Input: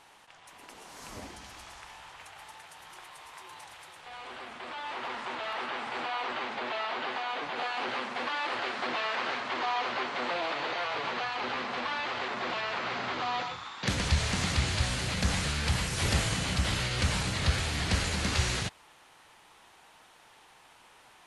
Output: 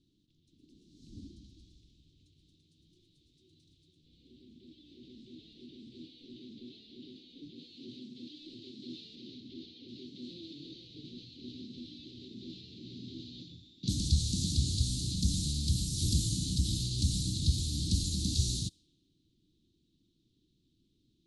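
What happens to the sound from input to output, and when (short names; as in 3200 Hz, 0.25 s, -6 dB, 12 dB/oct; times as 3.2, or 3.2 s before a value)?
9.15–9.87 LPF 7300 Hz -> 4500 Hz
whole clip: Chebyshev band-stop 320–3800 Hz, order 4; low-pass opened by the level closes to 1800 Hz, open at -28.5 dBFS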